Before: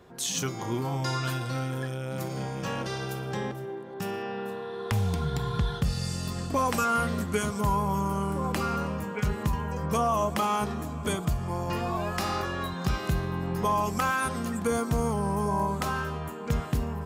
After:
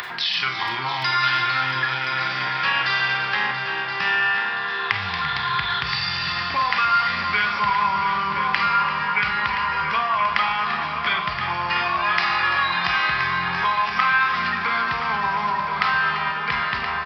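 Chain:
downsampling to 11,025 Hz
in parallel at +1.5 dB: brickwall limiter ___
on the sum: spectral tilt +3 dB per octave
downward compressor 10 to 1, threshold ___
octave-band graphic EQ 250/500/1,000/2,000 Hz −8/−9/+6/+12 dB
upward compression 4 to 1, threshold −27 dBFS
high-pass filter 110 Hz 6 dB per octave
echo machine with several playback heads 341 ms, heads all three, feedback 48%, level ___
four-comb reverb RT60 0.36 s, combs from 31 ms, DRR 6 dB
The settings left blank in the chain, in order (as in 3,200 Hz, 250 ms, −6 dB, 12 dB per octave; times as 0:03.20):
−24 dBFS, −24 dBFS, −12 dB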